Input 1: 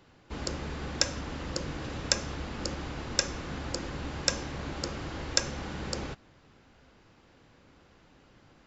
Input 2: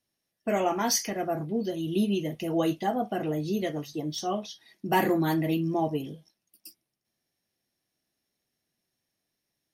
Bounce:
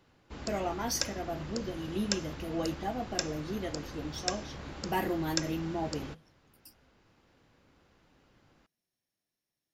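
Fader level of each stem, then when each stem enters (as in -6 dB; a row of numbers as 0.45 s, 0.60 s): -6.0 dB, -7.5 dB; 0.00 s, 0.00 s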